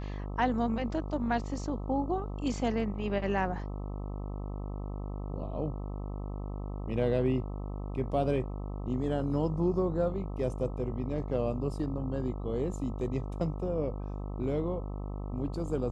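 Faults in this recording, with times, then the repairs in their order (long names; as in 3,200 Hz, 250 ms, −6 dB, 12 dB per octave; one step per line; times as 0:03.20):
mains buzz 50 Hz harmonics 26 −37 dBFS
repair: hum removal 50 Hz, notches 26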